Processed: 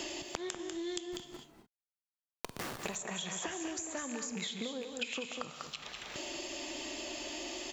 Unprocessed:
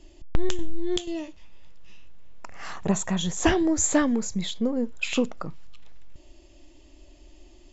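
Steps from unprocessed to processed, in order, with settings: rattling part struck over -28 dBFS, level -30 dBFS; HPF 1000 Hz 6 dB/oct; compressor 12:1, threshold -42 dBFS, peak gain reduction 22 dB; 1.06–2.82 Schmitt trigger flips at -41.5 dBFS; echo 0.195 s -8 dB; non-linear reverb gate 0.28 s flat, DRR 10 dB; three-band squash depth 100%; gain +6 dB

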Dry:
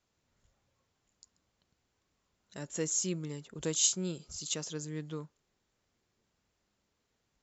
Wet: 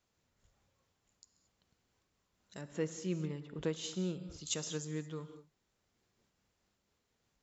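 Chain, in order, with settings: 2.61–4.47 LPF 2800 Hz 12 dB/oct; reverb, pre-delay 3 ms, DRR 11.5 dB; noise-modulated level, depth 55%; gain +2 dB

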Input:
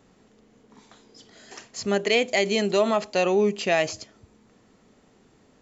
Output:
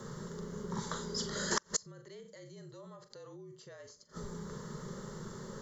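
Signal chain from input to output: fixed phaser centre 510 Hz, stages 8; on a send: flutter echo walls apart 7 m, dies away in 0.23 s; on the sum: limiter -24.5 dBFS, peak gain reduction 10.5 dB; frequency shift -44 Hz; flipped gate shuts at -31 dBFS, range -35 dB; gain +16 dB

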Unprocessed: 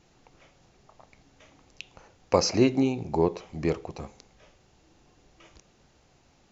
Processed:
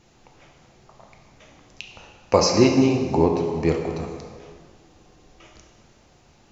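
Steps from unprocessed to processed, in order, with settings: plate-style reverb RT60 1.9 s, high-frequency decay 0.75×, DRR 2 dB; gain +4 dB

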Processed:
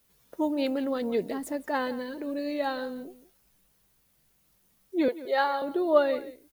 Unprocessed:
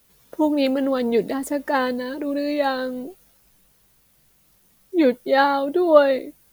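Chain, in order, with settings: 5.08–5.62 HPF 370 Hz 24 dB/oct; on a send: echo 0.172 s -16.5 dB; on the sum: gain -8 dB

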